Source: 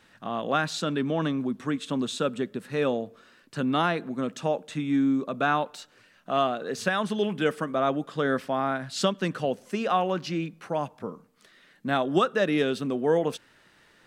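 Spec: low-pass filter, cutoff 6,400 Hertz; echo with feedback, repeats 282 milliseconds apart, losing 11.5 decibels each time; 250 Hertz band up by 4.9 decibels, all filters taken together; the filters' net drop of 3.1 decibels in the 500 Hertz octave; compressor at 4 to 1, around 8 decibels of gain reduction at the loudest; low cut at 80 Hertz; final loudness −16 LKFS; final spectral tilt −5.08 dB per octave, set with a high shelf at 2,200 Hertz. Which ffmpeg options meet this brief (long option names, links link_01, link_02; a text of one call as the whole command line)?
ffmpeg -i in.wav -af "highpass=80,lowpass=6400,equalizer=frequency=250:width_type=o:gain=7.5,equalizer=frequency=500:width_type=o:gain=-6.5,highshelf=frequency=2200:gain=6,acompressor=threshold=-25dB:ratio=4,aecho=1:1:282|564|846:0.266|0.0718|0.0194,volume=13.5dB" out.wav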